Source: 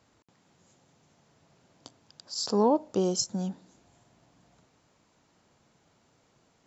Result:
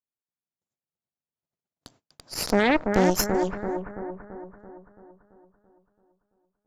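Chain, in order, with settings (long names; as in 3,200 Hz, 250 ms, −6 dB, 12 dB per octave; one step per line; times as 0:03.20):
harmonic generator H 5 −17 dB, 6 −8 dB, 7 −19 dB, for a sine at −12 dBFS
noise gate −59 dBFS, range −39 dB
bucket-brigade delay 335 ms, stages 4,096, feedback 54%, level −5 dB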